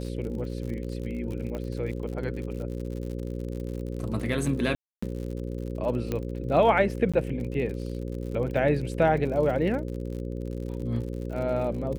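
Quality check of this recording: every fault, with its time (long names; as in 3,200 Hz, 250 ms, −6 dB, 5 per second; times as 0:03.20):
mains buzz 60 Hz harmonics 9 −33 dBFS
surface crackle 60 per second −35 dBFS
0:01.55: click −23 dBFS
0:04.75–0:05.03: drop-out 275 ms
0:06.12: click −16 dBFS
0:07.12–0:07.14: drop-out 16 ms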